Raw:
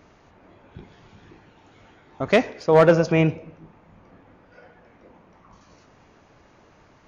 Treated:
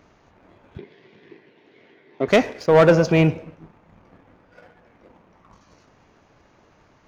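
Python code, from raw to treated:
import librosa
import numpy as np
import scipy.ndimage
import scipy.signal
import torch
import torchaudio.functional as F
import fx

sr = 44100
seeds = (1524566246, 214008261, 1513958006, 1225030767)

y = fx.leveller(x, sr, passes=1)
y = fx.cabinet(y, sr, low_hz=150.0, low_slope=24, high_hz=4700.0, hz=(180.0, 400.0, 820.0, 1300.0, 2000.0), db=(-5, 9, -8, -10, 7), at=(0.78, 2.28))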